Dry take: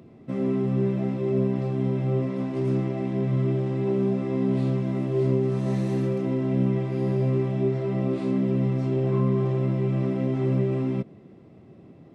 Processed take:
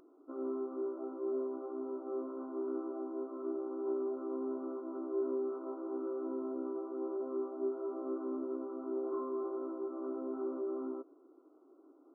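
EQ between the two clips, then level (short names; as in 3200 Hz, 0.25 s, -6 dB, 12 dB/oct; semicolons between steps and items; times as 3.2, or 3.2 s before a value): brick-wall FIR band-pass 270–1500 Hz; bell 580 Hz -13 dB 1.8 oct; 0.0 dB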